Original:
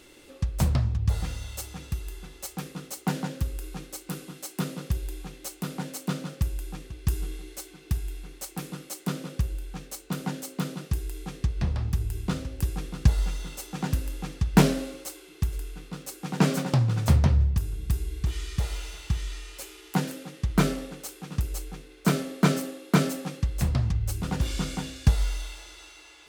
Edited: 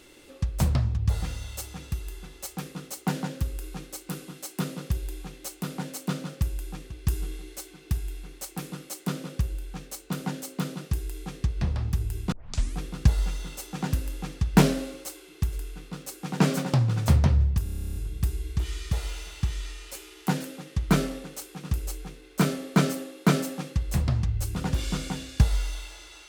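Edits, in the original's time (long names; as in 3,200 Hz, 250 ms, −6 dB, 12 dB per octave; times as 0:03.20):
0:12.32: tape start 0.47 s
0:17.63: stutter 0.03 s, 12 plays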